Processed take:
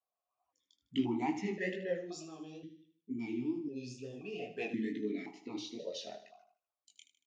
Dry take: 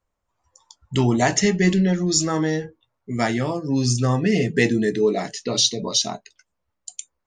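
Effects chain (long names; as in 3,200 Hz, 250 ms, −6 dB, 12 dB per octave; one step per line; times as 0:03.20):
gain on a spectral selection 0:02.23–0:04.40, 470–2,300 Hz −18 dB
chorus effect 2.2 Hz, delay 17.5 ms, depth 7.3 ms
on a send: repeating echo 77 ms, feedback 46%, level −12 dB
on the sum: formant filter that steps through the vowels 1.9 Hz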